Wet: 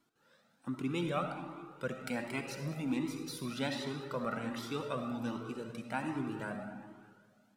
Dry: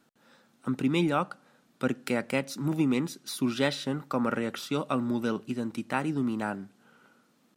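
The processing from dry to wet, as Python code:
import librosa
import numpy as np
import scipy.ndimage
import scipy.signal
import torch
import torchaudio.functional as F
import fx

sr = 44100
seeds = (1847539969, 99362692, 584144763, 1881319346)

p1 = x + fx.echo_feedback(x, sr, ms=203, feedback_pct=48, wet_db=-16.0, dry=0)
p2 = fx.rev_freeverb(p1, sr, rt60_s=1.6, hf_ratio=0.6, predelay_ms=25, drr_db=4.5)
p3 = fx.comb_cascade(p2, sr, direction='rising', hz=1.3)
y = p3 * 10.0 ** (-4.0 / 20.0)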